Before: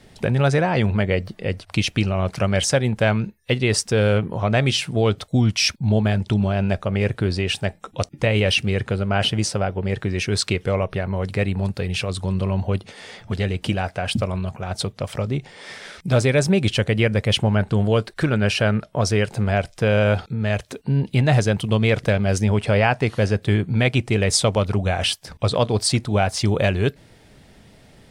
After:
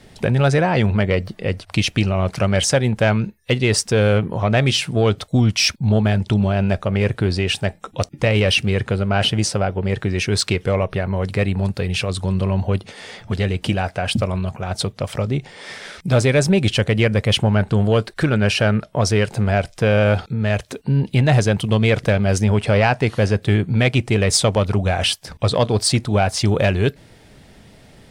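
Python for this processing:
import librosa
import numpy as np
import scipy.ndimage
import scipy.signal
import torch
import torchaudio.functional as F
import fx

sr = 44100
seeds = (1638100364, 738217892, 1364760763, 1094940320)

y = 10.0 ** (-8.0 / 20.0) * np.tanh(x / 10.0 ** (-8.0 / 20.0))
y = y * 10.0 ** (3.0 / 20.0)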